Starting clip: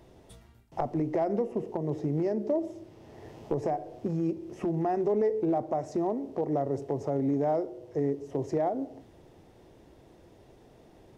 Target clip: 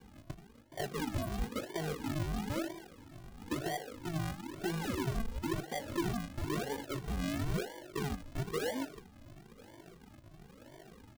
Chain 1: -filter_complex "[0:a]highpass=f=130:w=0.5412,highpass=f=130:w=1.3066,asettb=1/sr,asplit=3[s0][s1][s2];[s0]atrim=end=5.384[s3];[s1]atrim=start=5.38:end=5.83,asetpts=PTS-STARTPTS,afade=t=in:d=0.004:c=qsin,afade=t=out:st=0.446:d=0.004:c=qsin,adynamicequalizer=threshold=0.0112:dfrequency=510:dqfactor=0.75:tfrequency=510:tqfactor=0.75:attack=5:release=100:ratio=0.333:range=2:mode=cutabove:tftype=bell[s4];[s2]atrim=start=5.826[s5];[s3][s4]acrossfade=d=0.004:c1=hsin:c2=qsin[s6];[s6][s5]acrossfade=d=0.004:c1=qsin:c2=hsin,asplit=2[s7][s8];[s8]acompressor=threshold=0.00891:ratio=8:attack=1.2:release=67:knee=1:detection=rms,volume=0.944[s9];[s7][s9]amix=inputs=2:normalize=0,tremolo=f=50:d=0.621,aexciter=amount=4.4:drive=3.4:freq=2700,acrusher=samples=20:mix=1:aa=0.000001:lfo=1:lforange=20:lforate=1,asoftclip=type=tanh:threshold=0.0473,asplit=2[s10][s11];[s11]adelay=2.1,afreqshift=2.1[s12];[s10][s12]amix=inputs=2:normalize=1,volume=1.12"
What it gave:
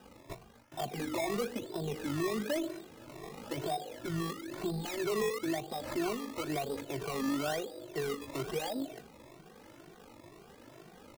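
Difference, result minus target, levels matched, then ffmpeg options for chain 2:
decimation with a swept rate: distortion -29 dB; compression: peak gain reduction -8.5 dB
-filter_complex "[0:a]highpass=f=130:w=0.5412,highpass=f=130:w=1.3066,asettb=1/sr,asplit=3[s0][s1][s2];[s0]atrim=end=5.384[s3];[s1]atrim=start=5.38:end=5.83,asetpts=PTS-STARTPTS,afade=t=in:d=0.004:c=qsin,afade=t=out:st=0.446:d=0.004:c=qsin,adynamicequalizer=threshold=0.0112:dfrequency=510:dqfactor=0.75:tfrequency=510:tqfactor=0.75:attack=5:release=100:ratio=0.333:range=2:mode=cutabove:tftype=bell[s4];[s2]atrim=start=5.826[s5];[s3][s4]acrossfade=d=0.004:c1=hsin:c2=qsin[s6];[s6][s5]acrossfade=d=0.004:c1=qsin:c2=hsin,asplit=2[s7][s8];[s8]acompressor=threshold=0.00282:ratio=8:attack=1.2:release=67:knee=1:detection=rms,volume=0.944[s9];[s7][s9]amix=inputs=2:normalize=0,tremolo=f=50:d=0.621,aexciter=amount=4.4:drive=3.4:freq=2700,acrusher=samples=66:mix=1:aa=0.000001:lfo=1:lforange=66:lforate=1,asoftclip=type=tanh:threshold=0.0473,asplit=2[s10][s11];[s11]adelay=2.1,afreqshift=2.1[s12];[s10][s12]amix=inputs=2:normalize=1,volume=1.12"

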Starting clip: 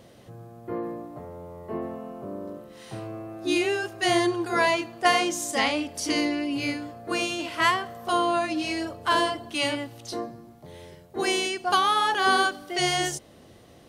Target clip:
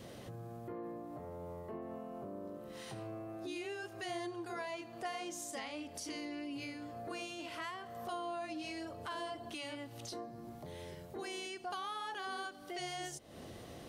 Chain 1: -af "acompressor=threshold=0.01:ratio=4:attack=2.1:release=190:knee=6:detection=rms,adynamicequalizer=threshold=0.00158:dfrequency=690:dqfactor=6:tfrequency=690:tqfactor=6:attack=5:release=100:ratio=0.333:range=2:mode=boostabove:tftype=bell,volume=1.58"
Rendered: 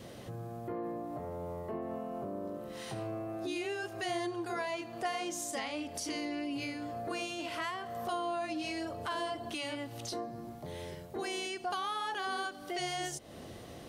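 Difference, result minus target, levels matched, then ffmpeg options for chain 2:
compression: peak gain reduction -5.5 dB
-af "acompressor=threshold=0.00422:ratio=4:attack=2.1:release=190:knee=6:detection=rms,adynamicequalizer=threshold=0.00158:dfrequency=690:dqfactor=6:tfrequency=690:tqfactor=6:attack=5:release=100:ratio=0.333:range=2:mode=boostabove:tftype=bell,volume=1.58"

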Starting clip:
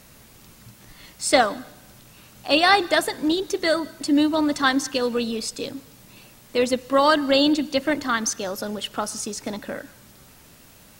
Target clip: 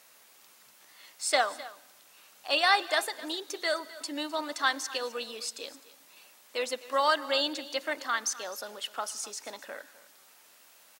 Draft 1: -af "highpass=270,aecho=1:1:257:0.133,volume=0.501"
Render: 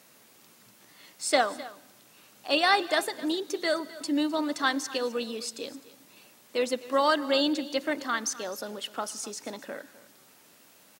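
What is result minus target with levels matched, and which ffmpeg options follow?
250 Hz band +9.5 dB
-af "highpass=640,aecho=1:1:257:0.133,volume=0.501"

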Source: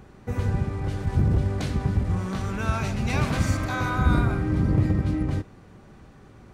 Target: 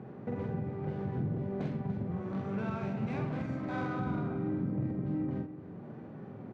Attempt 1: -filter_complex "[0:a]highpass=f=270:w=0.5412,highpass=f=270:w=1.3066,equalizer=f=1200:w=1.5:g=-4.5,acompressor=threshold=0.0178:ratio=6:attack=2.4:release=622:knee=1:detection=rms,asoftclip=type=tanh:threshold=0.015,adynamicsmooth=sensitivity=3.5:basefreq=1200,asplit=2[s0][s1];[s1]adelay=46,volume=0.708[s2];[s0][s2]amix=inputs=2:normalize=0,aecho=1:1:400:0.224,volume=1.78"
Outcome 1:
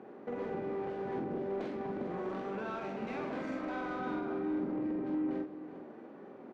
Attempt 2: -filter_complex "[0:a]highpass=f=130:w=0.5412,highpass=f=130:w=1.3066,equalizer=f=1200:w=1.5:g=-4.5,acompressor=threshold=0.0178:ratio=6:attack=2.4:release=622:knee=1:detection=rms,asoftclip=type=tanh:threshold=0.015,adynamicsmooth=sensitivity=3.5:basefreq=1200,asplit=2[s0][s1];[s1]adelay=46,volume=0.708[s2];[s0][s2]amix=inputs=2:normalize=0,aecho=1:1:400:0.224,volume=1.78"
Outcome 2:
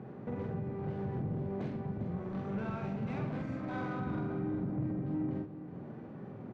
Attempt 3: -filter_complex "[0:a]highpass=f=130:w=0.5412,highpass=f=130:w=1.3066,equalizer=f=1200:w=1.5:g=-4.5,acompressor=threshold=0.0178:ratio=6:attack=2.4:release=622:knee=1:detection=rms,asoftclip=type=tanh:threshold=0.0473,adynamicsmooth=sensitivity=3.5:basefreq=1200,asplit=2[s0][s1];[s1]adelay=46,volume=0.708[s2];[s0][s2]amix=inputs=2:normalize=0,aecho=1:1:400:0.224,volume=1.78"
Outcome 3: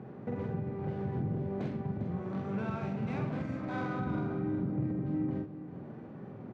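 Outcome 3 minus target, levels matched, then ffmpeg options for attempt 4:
echo 109 ms late
-filter_complex "[0:a]highpass=f=130:w=0.5412,highpass=f=130:w=1.3066,equalizer=f=1200:w=1.5:g=-4.5,acompressor=threshold=0.0178:ratio=6:attack=2.4:release=622:knee=1:detection=rms,asoftclip=type=tanh:threshold=0.0473,adynamicsmooth=sensitivity=3.5:basefreq=1200,asplit=2[s0][s1];[s1]adelay=46,volume=0.708[s2];[s0][s2]amix=inputs=2:normalize=0,aecho=1:1:291:0.224,volume=1.78"

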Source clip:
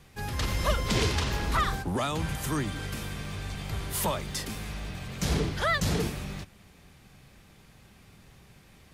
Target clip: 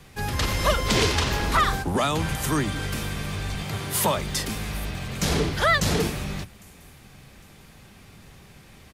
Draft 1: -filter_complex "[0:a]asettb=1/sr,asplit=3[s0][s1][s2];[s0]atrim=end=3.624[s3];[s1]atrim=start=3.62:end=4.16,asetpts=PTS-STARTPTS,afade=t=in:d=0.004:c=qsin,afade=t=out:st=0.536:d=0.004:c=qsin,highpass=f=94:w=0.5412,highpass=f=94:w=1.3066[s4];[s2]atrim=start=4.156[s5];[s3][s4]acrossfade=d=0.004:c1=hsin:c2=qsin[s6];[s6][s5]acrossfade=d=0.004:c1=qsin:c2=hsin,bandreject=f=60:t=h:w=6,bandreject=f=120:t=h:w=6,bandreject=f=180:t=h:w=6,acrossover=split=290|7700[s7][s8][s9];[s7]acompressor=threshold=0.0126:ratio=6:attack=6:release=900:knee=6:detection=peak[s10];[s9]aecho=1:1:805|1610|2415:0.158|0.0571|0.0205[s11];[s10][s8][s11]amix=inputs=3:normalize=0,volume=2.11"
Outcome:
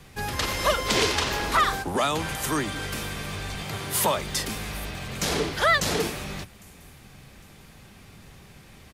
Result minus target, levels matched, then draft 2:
compression: peak gain reduction +9.5 dB
-filter_complex "[0:a]asettb=1/sr,asplit=3[s0][s1][s2];[s0]atrim=end=3.624[s3];[s1]atrim=start=3.62:end=4.16,asetpts=PTS-STARTPTS,afade=t=in:d=0.004:c=qsin,afade=t=out:st=0.536:d=0.004:c=qsin,highpass=f=94:w=0.5412,highpass=f=94:w=1.3066[s4];[s2]atrim=start=4.156[s5];[s3][s4]acrossfade=d=0.004:c1=hsin:c2=qsin[s6];[s6][s5]acrossfade=d=0.004:c1=qsin:c2=hsin,bandreject=f=60:t=h:w=6,bandreject=f=120:t=h:w=6,bandreject=f=180:t=h:w=6,acrossover=split=290|7700[s7][s8][s9];[s7]acompressor=threshold=0.0473:ratio=6:attack=6:release=900:knee=6:detection=peak[s10];[s9]aecho=1:1:805|1610|2415:0.158|0.0571|0.0205[s11];[s10][s8][s11]amix=inputs=3:normalize=0,volume=2.11"

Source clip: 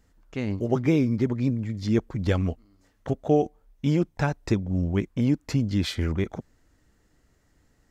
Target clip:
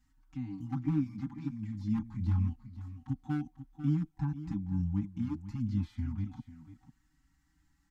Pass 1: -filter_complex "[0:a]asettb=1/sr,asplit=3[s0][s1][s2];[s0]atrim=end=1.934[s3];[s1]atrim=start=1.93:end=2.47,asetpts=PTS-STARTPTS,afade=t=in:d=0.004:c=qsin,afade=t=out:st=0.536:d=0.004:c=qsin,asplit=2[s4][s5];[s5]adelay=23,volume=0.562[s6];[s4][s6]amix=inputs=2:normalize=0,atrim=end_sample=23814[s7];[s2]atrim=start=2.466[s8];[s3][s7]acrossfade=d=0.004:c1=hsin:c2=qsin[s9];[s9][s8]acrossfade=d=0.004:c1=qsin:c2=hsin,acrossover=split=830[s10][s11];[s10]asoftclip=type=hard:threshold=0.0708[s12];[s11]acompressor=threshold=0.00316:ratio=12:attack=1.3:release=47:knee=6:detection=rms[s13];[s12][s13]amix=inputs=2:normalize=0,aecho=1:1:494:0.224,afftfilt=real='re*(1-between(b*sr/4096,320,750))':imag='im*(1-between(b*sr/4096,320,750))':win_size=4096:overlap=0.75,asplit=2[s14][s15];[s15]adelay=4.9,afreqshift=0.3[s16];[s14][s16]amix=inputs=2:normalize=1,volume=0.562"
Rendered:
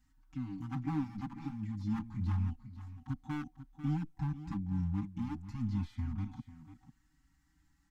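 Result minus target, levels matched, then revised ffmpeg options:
hard clipper: distortion +13 dB
-filter_complex "[0:a]asettb=1/sr,asplit=3[s0][s1][s2];[s0]atrim=end=1.934[s3];[s1]atrim=start=1.93:end=2.47,asetpts=PTS-STARTPTS,afade=t=in:d=0.004:c=qsin,afade=t=out:st=0.536:d=0.004:c=qsin,asplit=2[s4][s5];[s5]adelay=23,volume=0.562[s6];[s4][s6]amix=inputs=2:normalize=0,atrim=end_sample=23814[s7];[s2]atrim=start=2.466[s8];[s3][s7]acrossfade=d=0.004:c1=hsin:c2=qsin[s9];[s9][s8]acrossfade=d=0.004:c1=qsin:c2=hsin,acrossover=split=830[s10][s11];[s10]asoftclip=type=hard:threshold=0.168[s12];[s11]acompressor=threshold=0.00316:ratio=12:attack=1.3:release=47:knee=6:detection=rms[s13];[s12][s13]amix=inputs=2:normalize=0,aecho=1:1:494:0.224,afftfilt=real='re*(1-between(b*sr/4096,320,750))':imag='im*(1-between(b*sr/4096,320,750))':win_size=4096:overlap=0.75,asplit=2[s14][s15];[s15]adelay=4.9,afreqshift=0.3[s16];[s14][s16]amix=inputs=2:normalize=1,volume=0.562"

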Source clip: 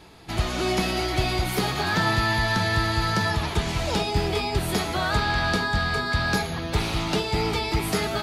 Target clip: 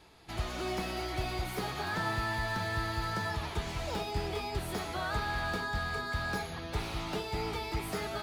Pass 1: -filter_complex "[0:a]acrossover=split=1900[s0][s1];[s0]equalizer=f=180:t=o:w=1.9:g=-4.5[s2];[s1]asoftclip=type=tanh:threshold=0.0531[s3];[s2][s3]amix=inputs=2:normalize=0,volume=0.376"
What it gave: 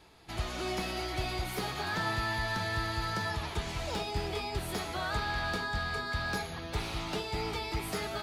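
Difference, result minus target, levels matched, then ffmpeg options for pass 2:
saturation: distortion -8 dB
-filter_complex "[0:a]acrossover=split=1900[s0][s1];[s0]equalizer=f=180:t=o:w=1.9:g=-4.5[s2];[s1]asoftclip=type=tanh:threshold=0.0224[s3];[s2][s3]amix=inputs=2:normalize=0,volume=0.376"

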